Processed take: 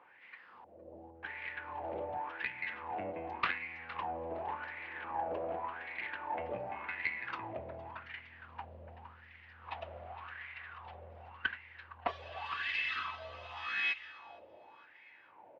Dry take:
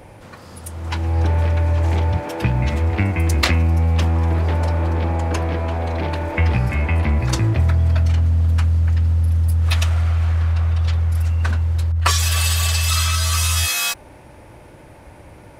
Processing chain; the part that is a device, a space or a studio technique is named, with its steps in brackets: 0.64–1.23 s: inverse Chebyshev band-stop 1.2–4.4 kHz, stop band 50 dB; feedback delay 462 ms, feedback 35%, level -14 dB; wah-wah guitar rig (wah-wah 0.88 Hz 570–2100 Hz, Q 6.3; valve stage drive 19 dB, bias 0.6; cabinet simulation 110–3900 Hz, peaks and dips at 140 Hz -7 dB, 610 Hz -6 dB, 1.3 kHz -6 dB, 2.8 kHz +5 dB); trim +3 dB

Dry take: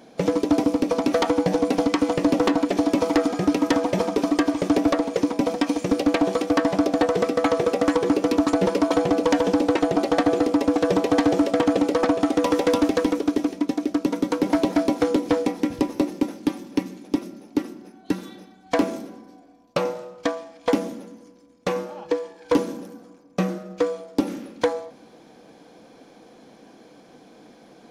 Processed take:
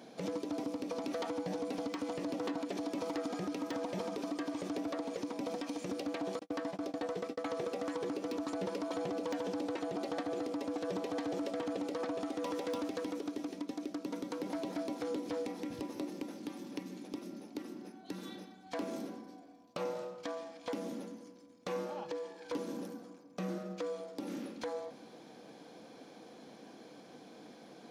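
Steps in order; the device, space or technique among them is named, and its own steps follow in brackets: 6.39–7.47 s: gate -21 dBFS, range -47 dB; broadcast voice chain (high-pass 100 Hz 12 dB/octave; de-esser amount 45%; compression 4:1, threshold -27 dBFS, peak gain reduction 11 dB; peaking EQ 4.1 kHz +2.5 dB; peak limiter -24 dBFS, peak gain reduction 11 dB); trim -4.5 dB

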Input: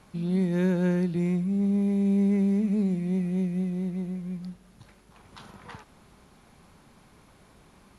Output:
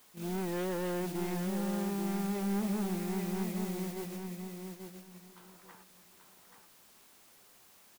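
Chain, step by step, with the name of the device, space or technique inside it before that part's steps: aircraft radio (band-pass 330–2700 Hz; hard clipper -34.5 dBFS, distortion -8 dB; white noise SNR 11 dB; gate -40 dBFS, range -13 dB); feedback delay 834 ms, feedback 18%, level -6 dB; trim +2 dB

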